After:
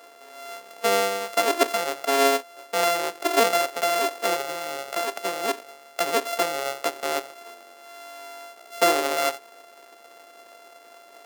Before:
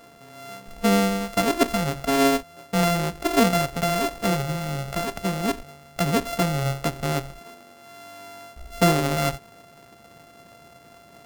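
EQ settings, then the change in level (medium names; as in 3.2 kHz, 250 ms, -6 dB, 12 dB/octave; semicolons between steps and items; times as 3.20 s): high-pass 370 Hz 24 dB/octave; +1.5 dB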